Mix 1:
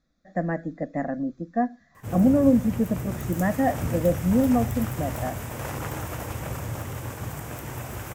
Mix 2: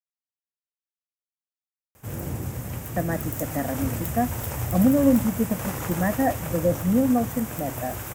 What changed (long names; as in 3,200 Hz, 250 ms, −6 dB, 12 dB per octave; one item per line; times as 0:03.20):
speech: entry +2.60 s
master: add high-shelf EQ 7,900 Hz +9 dB